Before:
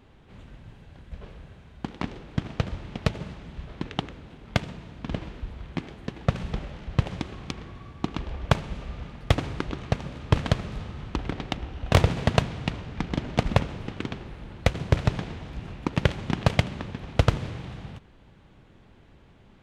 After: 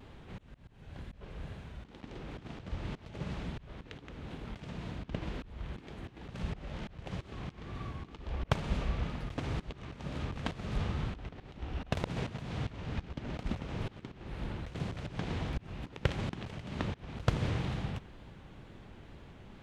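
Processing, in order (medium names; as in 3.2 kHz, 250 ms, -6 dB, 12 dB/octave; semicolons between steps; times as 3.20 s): slow attack 323 ms; vibrato 2.1 Hz 70 cents; trim +3 dB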